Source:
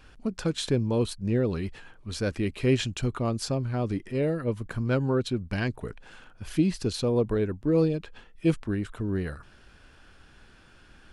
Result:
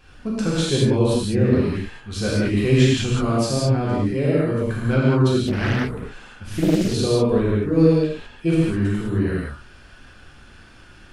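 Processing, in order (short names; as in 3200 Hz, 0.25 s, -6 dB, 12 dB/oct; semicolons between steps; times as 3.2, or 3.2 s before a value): non-linear reverb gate 0.23 s flat, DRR -7.5 dB; 5.47–6.94 Doppler distortion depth 0.56 ms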